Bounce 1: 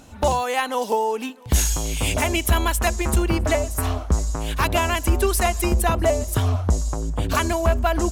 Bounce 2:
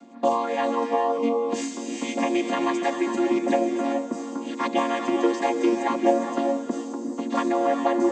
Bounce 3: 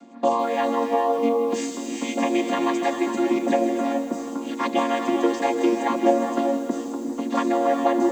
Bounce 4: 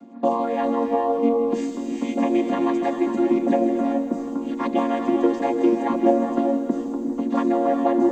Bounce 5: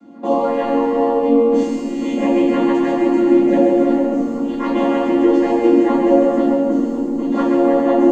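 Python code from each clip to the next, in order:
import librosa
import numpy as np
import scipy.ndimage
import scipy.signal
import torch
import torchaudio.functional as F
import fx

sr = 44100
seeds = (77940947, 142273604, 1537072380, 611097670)

y1 = fx.chord_vocoder(x, sr, chord='minor triad', root=58)
y1 = fx.rev_gated(y1, sr, seeds[0], gate_ms=450, shape='rising', drr_db=4.0)
y2 = fx.echo_crushed(y1, sr, ms=159, feedback_pct=35, bits=7, wet_db=-12.0)
y2 = y2 * 10.0 ** (1.0 / 20.0)
y3 = fx.tilt_eq(y2, sr, slope=-3.0)
y3 = y3 * 10.0 ** (-2.5 / 20.0)
y4 = y3 + 10.0 ** (-6.0 / 20.0) * np.pad(y3, (int(135 * sr / 1000.0), 0))[:len(y3)]
y4 = fx.room_shoebox(y4, sr, seeds[1], volume_m3=110.0, walls='mixed', distance_m=2.2)
y4 = y4 * 10.0 ** (-4.0 / 20.0)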